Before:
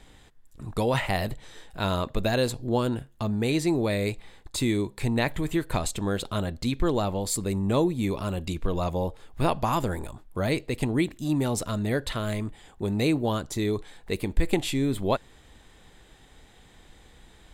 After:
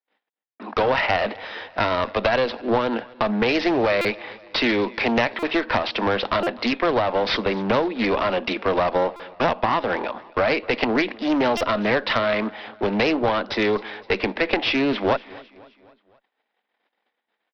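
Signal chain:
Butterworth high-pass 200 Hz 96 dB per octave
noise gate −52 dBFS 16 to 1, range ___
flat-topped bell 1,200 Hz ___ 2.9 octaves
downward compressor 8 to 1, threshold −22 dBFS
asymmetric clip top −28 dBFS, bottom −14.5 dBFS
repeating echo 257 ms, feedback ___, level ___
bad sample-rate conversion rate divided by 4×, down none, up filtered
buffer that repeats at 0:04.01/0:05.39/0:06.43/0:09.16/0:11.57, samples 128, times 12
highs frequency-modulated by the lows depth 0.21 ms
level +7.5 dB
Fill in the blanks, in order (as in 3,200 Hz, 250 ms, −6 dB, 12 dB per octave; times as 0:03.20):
−56 dB, +10.5 dB, 54%, −22.5 dB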